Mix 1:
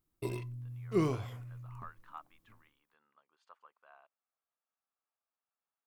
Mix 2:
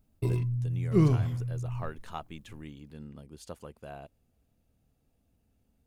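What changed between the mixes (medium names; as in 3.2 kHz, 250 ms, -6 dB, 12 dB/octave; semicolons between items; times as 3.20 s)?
speech: remove ladder band-pass 1.3 kHz, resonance 55%; background: add tone controls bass +14 dB, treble 0 dB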